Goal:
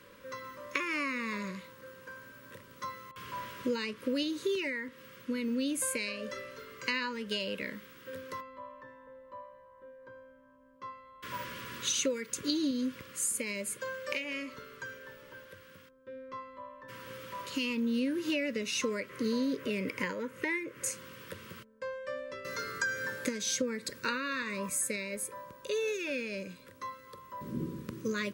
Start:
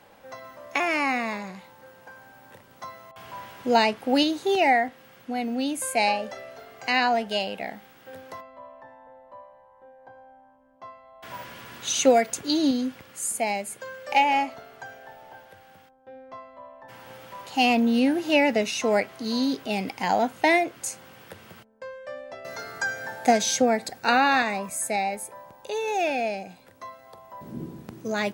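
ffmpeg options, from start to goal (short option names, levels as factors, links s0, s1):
-filter_complex "[0:a]asettb=1/sr,asplit=3[s0][s1][s2];[s0]atrim=end=19.094[s3];[s1]atrim=start=19.09:end=20.91,asetpts=PTS-STARTPTS,afade=t=in:d=0.004:c=qsin,afade=t=out:st=1.816:d=0.004:c=qsin,equalizer=f=125:t=o:w=1:g=4,equalizer=f=500:t=o:w=1:g=8,equalizer=f=2000:t=o:w=1:g=7,equalizer=f=4000:t=o:w=1:g=-6[s4];[s2]atrim=start=20.906[s5];[s3][s4]acrossfade=d=0.004:c1=hsin:c2=qsin[s6];[s6][s5]acrossfade=d=0.004:c1=qsin:c2=hsin,acompressor=threshold=0.0398:ratio=8,asuperstop=centerf=750:order=12:qfactor=2.1"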